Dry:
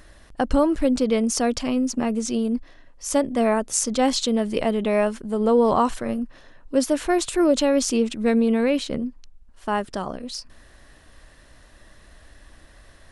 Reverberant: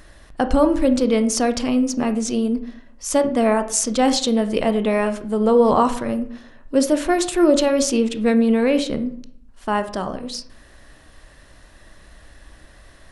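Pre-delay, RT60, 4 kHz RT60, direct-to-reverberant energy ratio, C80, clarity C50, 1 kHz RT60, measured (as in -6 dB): 18 ms, 0.60 s, 0.35 s, 9.0 dB, 16.0 dB, 12.5 dB, 0.55 s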